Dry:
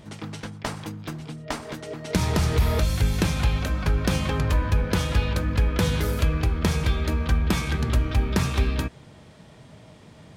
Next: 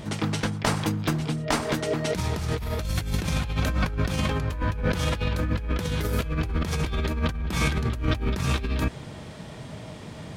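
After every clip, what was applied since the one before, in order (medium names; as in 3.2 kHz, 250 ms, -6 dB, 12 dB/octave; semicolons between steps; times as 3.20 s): compressor with a negative ratio -29 dBFS, ratio -1; trim +3 dB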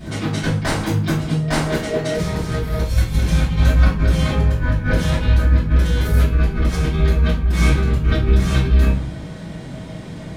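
reverberation RT60 0.45 s, pre-delay 3 ms, DRR -12 dB; trim -8 dB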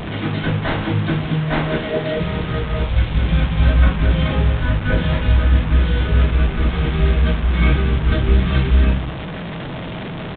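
one-bit delta coder 32 kbps, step -21.5 dBFS; resampled via 8 kHz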